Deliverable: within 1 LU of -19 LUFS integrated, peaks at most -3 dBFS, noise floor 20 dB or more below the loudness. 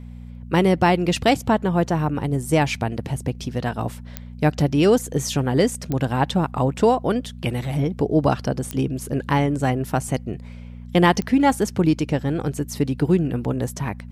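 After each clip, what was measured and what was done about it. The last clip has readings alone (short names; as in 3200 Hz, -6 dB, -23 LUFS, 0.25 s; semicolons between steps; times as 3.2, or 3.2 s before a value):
clicks 4; hum 60 Hz; harmonics up to 240 Hz; hum level -35 dBFS; loudness -21.5 LUFS; peak -3.5 dBFS; loudness target -19.0 LUFS
-> de-click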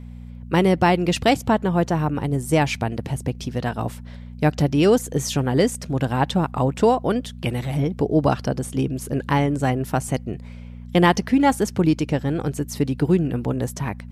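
clicks 0; hum 60 Hz; harmonics up to 240 Hz; hum level -35 dBFS
-> de-hum 60 Hz, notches 4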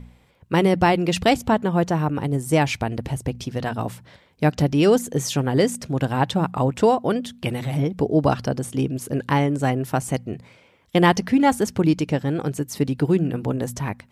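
hum none; loudness -22.0 LUFS; peak -4.0 dBFS; loudness target -19.0 LUFS
-> gain +3 dB; limiter -3 dBFS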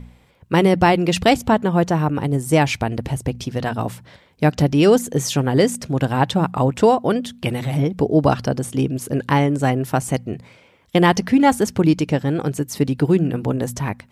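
loudness -19.0 LUFS; peak -3.0 dBFS; noise floor -54 dBFS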